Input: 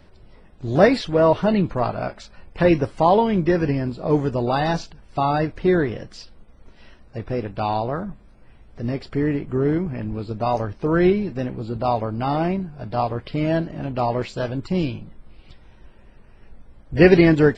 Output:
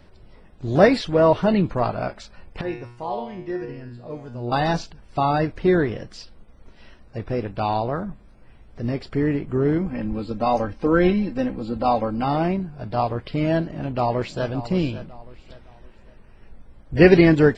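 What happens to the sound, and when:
2.61–4.52 s: feedback comb 120 Hz, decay 0.61 s, mix 90%
9.81–12.24 s: comb 3.8 ms, depth 67%
13.66–14.50 s: echo throw 560 ms, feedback 35%, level -13.5 dB

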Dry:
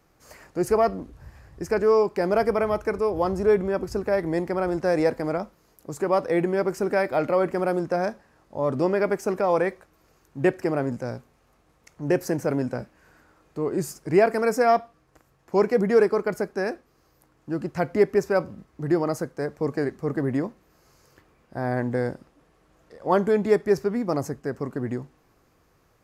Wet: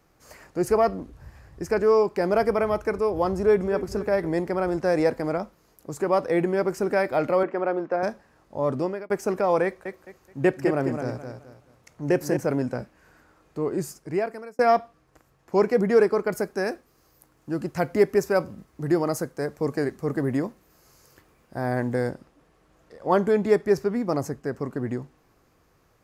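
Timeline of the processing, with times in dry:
3.35–3.77 s: echo throw 250 ms, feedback 50%, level -14.5 dB
7.43–8.03 s: band-pass 300–2500 Hz
8.70–9.10 s: fade out
9.64–12.37 s: feedback delay 213 ms, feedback 29%, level -7 dB
13.64–14.59 s: fade out
16.32–22.10 s: treble shelf 7 kHz +9.5 dB

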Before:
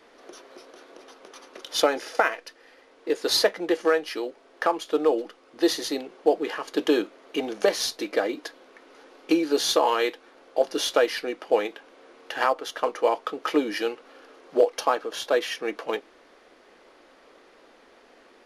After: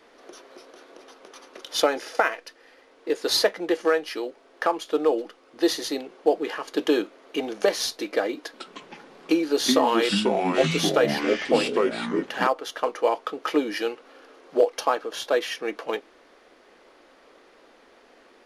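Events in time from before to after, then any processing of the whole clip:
8.40–12.47 s: ever faster or slower copies 138 ms, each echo -4 st, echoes 3

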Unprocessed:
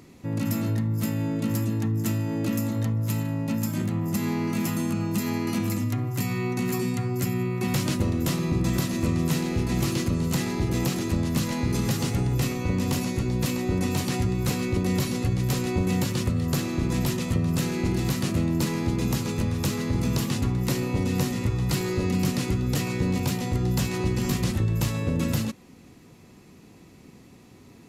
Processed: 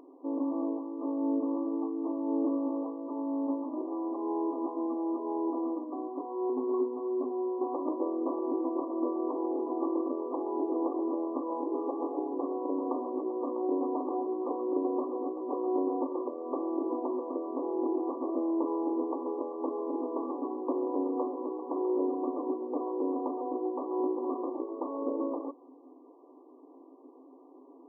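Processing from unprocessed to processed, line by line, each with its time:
6.49–7.31 s: comb 4.7 ms, depth 72%
whole clip: FFT band-pass 250–1200 Hz; trim +1 dB

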